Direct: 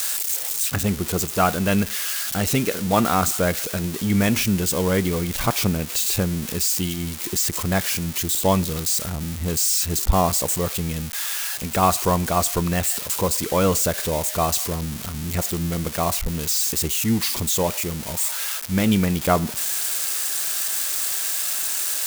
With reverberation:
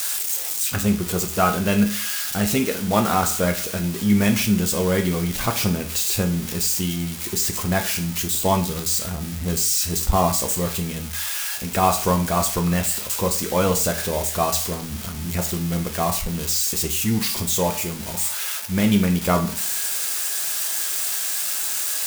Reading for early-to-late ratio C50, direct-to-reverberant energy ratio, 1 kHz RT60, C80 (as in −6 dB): 11.5 dB, 3.0 dB, 0.40 s, 16.0 dB